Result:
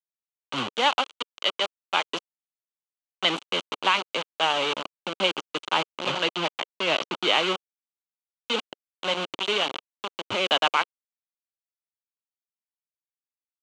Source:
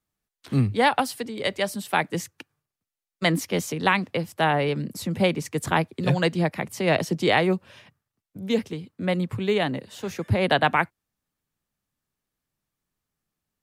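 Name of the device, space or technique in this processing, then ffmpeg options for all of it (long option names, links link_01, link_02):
hand-held game console: -filter_complex "[0:a]acrusher=bits=3:mix=0:aa=0.000001,highpass=440,equalizer=frequency=460:width_type=q:width=4:gain=-4,equalizer=frequency=710:width_type=q:width=4:gain=-6,equalizer=frequency=1200:width_type=q:width=4:gain=3,equalizer=frequency=1800:width_type=q:width=4:gain=-10,equalizer=frequency=3000:width_type=q:width=4:gain=9,equalizer=frequency=5200:width_type=q:width=4:gain=-10,lowpass=frequency=5700:width=0.5412,lowpass=frequency=5700:width=1.3066,asettb=1/sr,asplit=3[link_01][link_02][link_03];[link_01]atrim=end=6.114[link_04];[link_02]atrim=start=6.11:end=7.27,asetpts=PTS-STARTPTS,afade=type=in:duration=0.004:curve=qsin,afade=type=out:start_time=1.156:duration=0.004:curve=qsin,lowpass=8500[link_05];[link_03]atrim=start=7.266[link_06];[link_04][link_05]acrossfade=duration=0.004:curve1=hsin:curve2=qsin[link_07];[link_07][link_06]acrossfade=duration=0.004:curve1=qsin:curve2=hsin"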